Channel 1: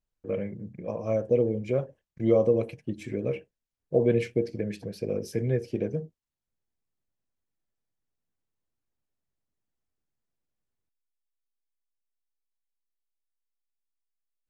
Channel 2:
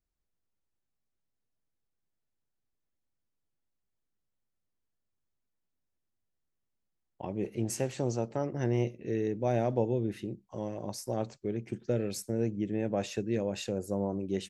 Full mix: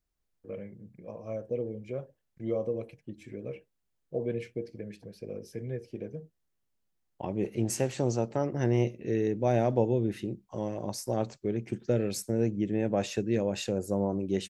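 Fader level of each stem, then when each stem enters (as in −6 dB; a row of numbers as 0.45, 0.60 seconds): −9.5, +3.0 decibels; 0.20, 0.00 seconds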